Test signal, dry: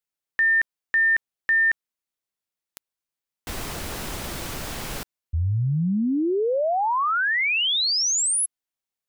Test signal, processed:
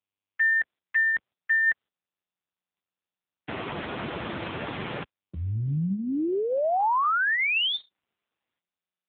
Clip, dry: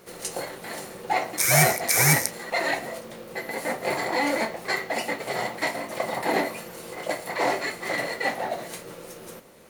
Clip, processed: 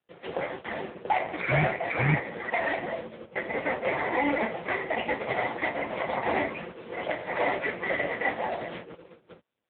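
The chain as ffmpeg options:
-filter_complex "[0:a]agate=range=0.00282:threshold=0.0126:ratio=16:release=287:detection=peak,acrossover=split=160|1100|3000[s0][s1][s2][s3];[s0]acompressor=threshold=0.0158:ratio=3[s4];[s1]acompressor=threshold=0.0251:ratio=2.5[s5];[s2]acompressor=threshold=0.0178:ratio=2.5[s6];[s3]acompressor=threshold=0.00501:ratio=1.5[s7];[s4][s5][s6][s7]amix=inputs=4:normalize=0,volume=2" -ar 8000 -c:a libopencore_amrnb -b:a 5900

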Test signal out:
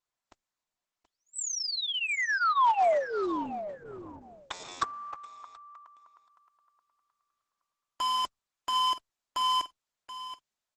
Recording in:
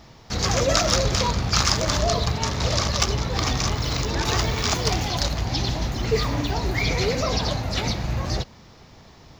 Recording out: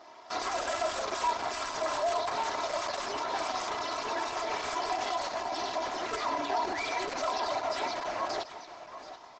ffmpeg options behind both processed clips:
-af "highpass=450,highshelf=f=2400:g=-2,aeval=exprs='(mod(7.94*val(0)+1,2)-1)/7.94':c=same,aecho=1:1:3:0.88,alimiter=limit=0.0794:level=0:latency=1:release=23,equalizer=f=900:t=o:w=1.7:g=10.5,aecho=1:1:728|1456:0.224|0.0336,volume=0.473" -ar 48000 -c:a libopus -b:a 12k

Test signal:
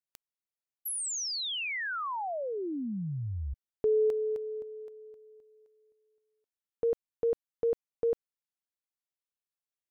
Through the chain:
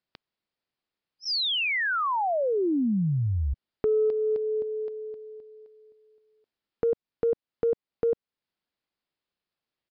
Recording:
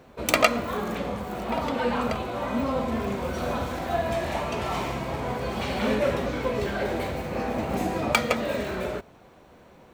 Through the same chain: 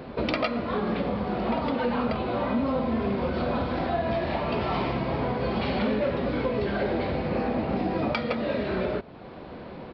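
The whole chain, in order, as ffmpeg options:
-af "equalizer=f=240:w=0.53:g=5,aresample=11025,asoftclip=type=tanh:threshold=0.282,aresample=44100,acompressor=threshold=0.0282:ratio=5:attack=1.9:release=893:knee=6:detection=peak,volume=2.82"

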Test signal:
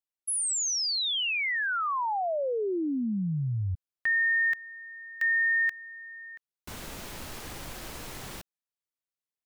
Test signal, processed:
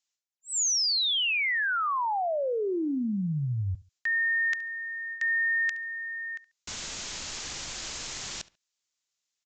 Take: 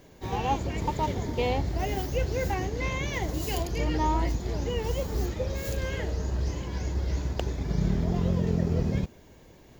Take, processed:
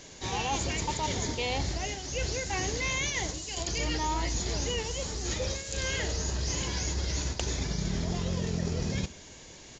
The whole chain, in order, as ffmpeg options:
-filter_complex "[0:a]crystalizer=i=8:c=0,areverse,acompressor=threshold=0.0501:ratio=6:attack=4.9:release=121:knee=1:detection=rms,areverse,aresample=16000,aresample=44100,asplit=2[s0][s1];[s1]adelay=70,lowpass=f=4300:p=1,volume=0.112,asplit=2[s2][s3];[s3]adelay=70,lowpass=f=4300:p=1,volume=0.26[s4];[s0][s2][s4]amix=inputs=3:normalize=0"

